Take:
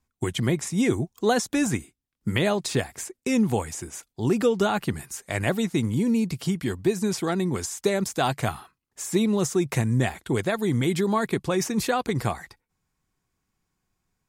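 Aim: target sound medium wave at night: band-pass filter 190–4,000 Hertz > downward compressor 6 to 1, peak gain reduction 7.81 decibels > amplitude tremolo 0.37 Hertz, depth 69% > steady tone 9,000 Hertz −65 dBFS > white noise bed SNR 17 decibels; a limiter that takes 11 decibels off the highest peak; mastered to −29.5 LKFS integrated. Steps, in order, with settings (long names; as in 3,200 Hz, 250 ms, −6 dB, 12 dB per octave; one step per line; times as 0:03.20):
brickwall limiter −20.5 dBFS
band-pass filter 190–4,000 Hz
downward compressor 6 to 1, threshold −32 dBFS
amplitude tremolo 0.37 Hz, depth 69%
steady tone 9,000 Hz −65 dBFS
white noise bed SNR 17 dB
level +11 dB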